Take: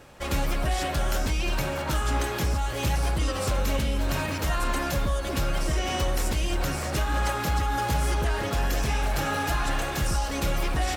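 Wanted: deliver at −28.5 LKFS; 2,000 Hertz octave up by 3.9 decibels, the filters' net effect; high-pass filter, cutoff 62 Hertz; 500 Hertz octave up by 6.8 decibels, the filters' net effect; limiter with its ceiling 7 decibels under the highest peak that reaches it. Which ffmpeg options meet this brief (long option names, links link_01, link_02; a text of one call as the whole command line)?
ffmpeg -i in.wav -af "highpass=62,equalizer=frequency=500:width_type=o:gain=8,equalizer=frequency=2000:width_type=o:gain=4.5,volume=-0.5dB,alimiter=limit=-19.5dB:level=0:latency=1" out.wav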